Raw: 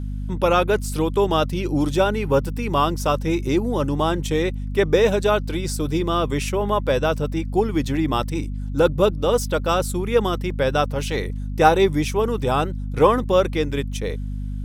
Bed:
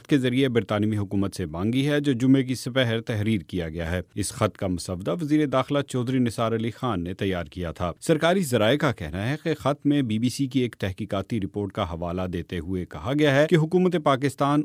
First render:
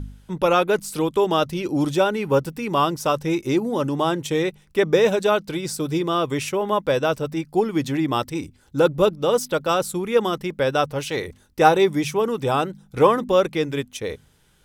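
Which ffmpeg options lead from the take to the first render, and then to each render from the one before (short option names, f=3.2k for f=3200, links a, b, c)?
-af "bandreject=f=50:t=h:w=4,bandreject=f=100:t=h:w=4,bandreject=f=150:t=h:w=4,bandreject=f=200:t=h:w=4,bandreject=f=250:t=h:w=4"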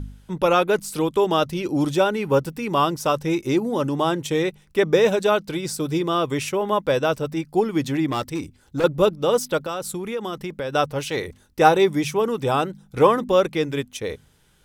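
-filter_complex "[0:a]asettb=1/sr,asplit=3[a][b][c];[a]atrim=end=8.104[d];[b]atrim=start=8.1:end=8.84,asetpts=PTS-STARTPTS,afade=t=in:d=0.004:c=qsin,afade=t=out:st=0.736:d=0.004:c=qsin,asoftclip=type=hard:threshold=-20dB[e];[c]atrim=start=8.836[f];[d][e]acrossfade=d=0.004:c1=hsin:c2=qsin[g];[g][f]acrossfade=d=0.004:c1=qsin:c2=hsin,asettb=1/sr,asplit=3[h][i][j];[h]atrim=end=9.594[k];[i]atrim=start=9.59:end=10.73,asetpts=PTS-STARTPTS,afade=t=in:d=0.004:c=qsin,afade=t=out:st=1.136:d=0.004:c=qsin,acompressor=threshold=-25dB:ratio=4:attack=3.2:release=140:knee=1:detection=peak[l];[j]atrim=start=10.726[m];[k][l]acrossfade=d=0.004:c1=hsin:c2=qsin[n];[n][m]acrossfade=d=0.004:c1=qsin:c2=hsin"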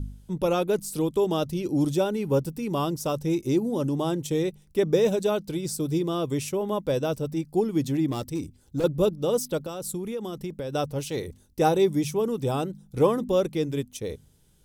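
-af "equalizer=f=1.6k:t=o:w=2.6:g=-13.5"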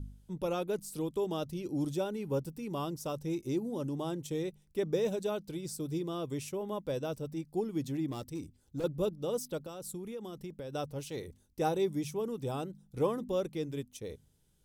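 -af "volume=-9.5dB"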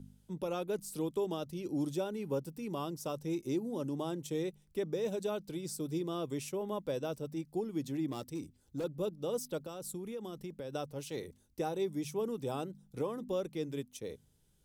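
-filter_complex "[0:a]acrossover=split=130[a][b];[a]acompressor=threshold=-60dB:ratio=6[c];[b]alimiter=level_in=1.5dB:limit=-24dB:level=0:latency=1:release=331,volume=-1.5dB[d];[c][d]amix=inputs=2:normalize=0"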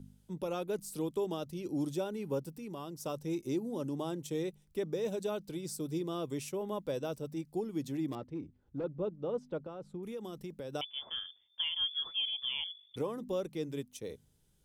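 -filter_complex "[0:a]asettb=1/sr,asplit=3[a][b][c];[a]atrim=end=2.514[d];[b]atrim=start=2.51:end=3,asetpts=PTS-STARTPTS,afade=t=in:d=0.004:c=qsin,afade=t=out:st=0.486:d=0.004:c=qsin,acompressor=threshold=-46dB:ratio=1.5:attack=3.2:release=140:knee=1:detection=peak[e];[c]atrim=start=2.996[f];[d][e]acrossfade=d=0.004:c1=hsin:c2=qsin[g];[g][f]acrossfade=d=0.004:c1=qsin:c2=hsin,asettb=1/sr,asplit=3[h][i][j];[h]atrim=end=8.154[k];[i]atrim=start=8.15:end=10.03,asetpts=PTS-STARTPTS,afade=t=in:d=0.004:c=qsin,afade=t=out:st=1.876:d=0.004:c=qsin,lowpass=1.8k[l];[j]atrim=start=10.026[m];[k][l]acrossfade=d=0.004:c1=hsin:c2=qsin[n];[n][m]acrossfade=d=0.004:c1=qsin:c2=hsin,asettb=1/sr,asplit=3[o][p][q];[o]atrim=end=10.814[r];[p]atrim=start=10.81:end=12.96,asetpts=PTS-STARTPTS,afade=t=in:d=0.004:c=qsin,afade=t=out:st=2.146:d=0.004:c=qsin,lowpass=f=3.1k:t=q:w=0.5098,lowpass=f=3.1k:t=q:w=0.6013,lowpass=f=3.1k:t=q:w=0.9,lowpass=f=3.1k:t=q:w=2.563,afreqshift=-3600[s];[q]atrim=start=12.956[t];[r][s]acrossfade=d=0.004:c1=hsin:c2=qsin[u];[u][t]acrossfade=d=0.004:c1=qsin:c2=hsin"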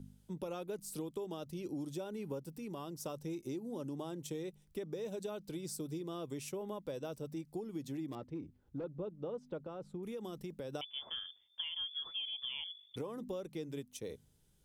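-af "acompressor=threshold=-38dB:ratio=6"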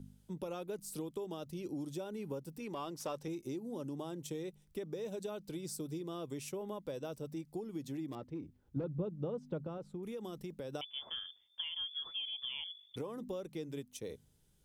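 -filter_complex "[0:a]asettb=1/sr,asplit=3[a][b][c];[a]atrim=end=2.604[d];[b]atrim=start=2.6:end=3.28,asetpts=PTS-STARTPTS,afade=t=in:d=0.004:c=qsin,afade=t=out:st=0.676:d=0.004:c=qsin,asplit=2[e][f];[f]highpass=f=720:p=1,volume=13dB,asoftclip=type=tanh:threshold=-27.5dB[g];[e][g]amix=inputs=2:normalize=0,lowpass=f=3.4k:p=1,volume=-6dB[h];[c]atrim=start=3.276[i];[d][h]acrossfade=d=0.004:c1=hsin:c2=qsin[j];[j][i]acrossfade=d=0.004:c1=qsin:c2=hsin,asettb=1/sr,asplit=3[k][l][m];[k]atrim=end=8.764[n];[l]atrim=start=8.76:end=9.78,asetpts=PTS-STARTPTS,afade=t=in:d=0.004:c=qsin,afade=t=out:st=1.016:d=0.004:c=qsin,equalizer=f=130:t=o:w=1.8:g=10[o];[m]atrim=start=9.776[p];[n][o]acrossfade=d=0.004:c1=hsin:c2=qsin[q];[q][p]acrossfade=d=0.004:c1=qsin:c2=hsin"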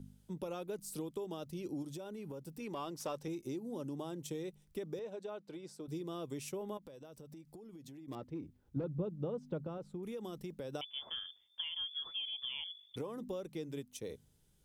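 -filter_complex "[0:a]asettb=1/sr,asplit=3[a][b][c];[a]atrim=end=1.824[d];[b]atrim=start=1.82:end=2.59,asetpts=PTS-STARTPTS,afade=t=in:d=0.004:c=qsin,afade=t=out:st=0.766:d=0.004:c=qsin,acompressor=threshold=-41dB:ratio=6:attack=3.2:release=140:knee=1:detection=peak[e];[c]atrim=start=2.586[f];[d][e]acrossfade=d=0.004:c1=hsin:c2=qsin[g];[g][f]acrossfade=d=0.004:c1=qsin:c2=hsin,asettb=1/sr,asplit=3[h][i][j];[h]atrim=end=4.994[k];[i]atrim=start=4.99:end=5.88,asetpts=PTS-STARTPTS,afade=t=in:d=0.004:c=qsin,afade=t=out:st=0.886:d=0.004:c=qsin,bandpass=f=950:t=q:w=0.52[l];[j]atrim=start=5.876[m];[k][l]acrossfade=d=0.004:c1=hsin:c2=qsin[n];[n][m]acrossfade=d=0.004:c1=qsin:c2=hsin,asettb=1/sr,asplit=3[o][p][q];[o]atrim=end=6.774[r];[p]atrim=start=6.77:end=8.08,asetpts=PTS-STARTPTS,afade=t=in:d=0.004:c=qsin,afade=t=out:st=1.306:d=0.004:c=qsin,acompressor=threshold=-49dB:ratio=8:attack=3.2:release=140:knee=1:detection=peak[s];[q]atrim=start=8.076[t];[r][s]acrossfade=d=0.004:c1=hsin:c2=qsin[u];[u][t]acrossfade=d=0.004:c1=qsin:c2=hsin"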